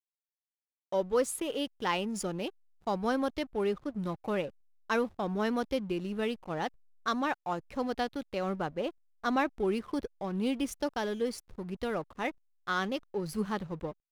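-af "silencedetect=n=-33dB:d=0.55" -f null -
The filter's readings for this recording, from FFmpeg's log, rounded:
silence_start: 0.00
silence_end: 0.92 | silence_duration: 0.92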